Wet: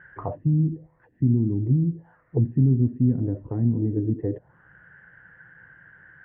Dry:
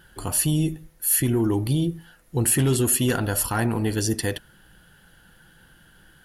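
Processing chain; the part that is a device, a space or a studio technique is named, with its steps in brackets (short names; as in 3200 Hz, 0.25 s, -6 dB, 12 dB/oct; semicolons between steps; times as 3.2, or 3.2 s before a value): envelope filter bass rig (envelope low-pass 230–1700 Hz down, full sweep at -19 dBFS; speaker cabinet 80–2200 Hz, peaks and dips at 120 Hz +5 dB, 220 Hz -9 dB, 340 Hz -5 dB, 820 Hz -4 dB, 1400 Hz -7 dB, 2000 Hz +8 dB); gain -1.5 dB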